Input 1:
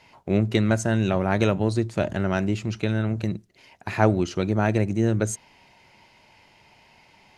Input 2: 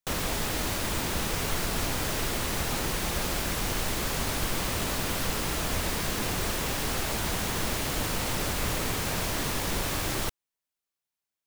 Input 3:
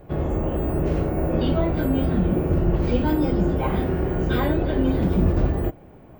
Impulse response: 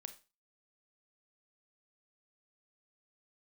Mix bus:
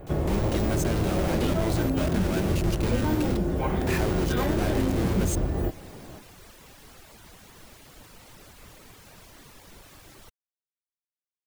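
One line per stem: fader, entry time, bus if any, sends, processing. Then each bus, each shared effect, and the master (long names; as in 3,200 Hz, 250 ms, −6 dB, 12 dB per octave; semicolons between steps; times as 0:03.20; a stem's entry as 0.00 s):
−3.0 dB, 0.00 s, no send, downward compressor 3 to 1, threshold −30 dBFS, peak gain reduction 13.5 dB; log-companded quantiser 2 bits
−18.0 dB, 0.00 s, no send, reverb reduction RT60 0.75 s
+2.5 dB, 0.00 s, no send, downward compressor, threshold −25 dBFS, peak gain reduction 11 dB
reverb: not used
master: no processing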